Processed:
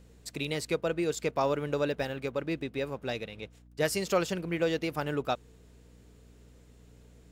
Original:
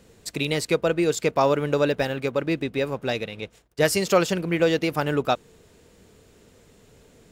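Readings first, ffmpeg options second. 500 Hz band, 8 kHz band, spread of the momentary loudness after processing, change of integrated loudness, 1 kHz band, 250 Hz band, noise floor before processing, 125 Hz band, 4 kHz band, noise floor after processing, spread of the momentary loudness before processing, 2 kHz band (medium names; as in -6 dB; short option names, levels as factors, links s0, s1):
-8.0 dB, -8.0 dB, 8 LU, -8.0 dB, -8.0 dB, -8.0 dB, -56 dBFS, -8.0 dB, -8.0 dB, -56 dBFS, 8 LU, -8.0 dB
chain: -af "aeval=exprs='val(0)+0.00447*(sin(2*PI*60*n/s)+sin(2*PI*2*60*n/s)/2+sin(2*PI*3*60*n/s)/3+sin(2*PI*4*60*n/s)/4+sin(2*PI*5*60*n/s)/5)':c=same,volume=0.398"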